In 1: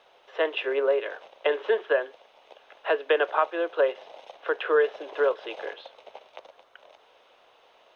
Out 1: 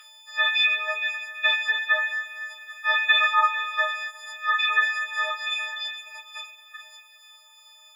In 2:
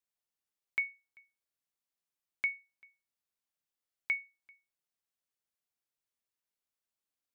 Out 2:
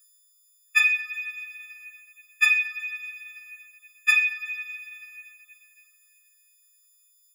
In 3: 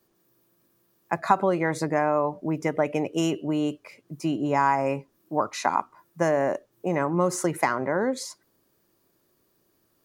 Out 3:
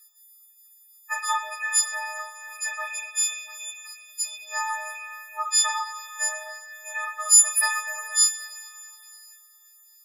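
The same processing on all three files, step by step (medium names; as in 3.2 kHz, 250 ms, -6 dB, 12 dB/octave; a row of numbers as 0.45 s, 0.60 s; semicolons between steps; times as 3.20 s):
partials quantised in pitch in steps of 6 st; high-pass 1.4 kHz 24 dB/octave; reverb removal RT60 1.1 s; dynamic bell 2.3 kHz, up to +3 dB, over -45 dBFS, Q 6.5; harmonic-percussive split percussive +5 dB; two-slope reverb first 0.31 s, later 3 s, from -19 dB, DRR -2 dB; normalise loudness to -23 LUFS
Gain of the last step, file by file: +6.5 dB, +14.0 dB, +0.5 dB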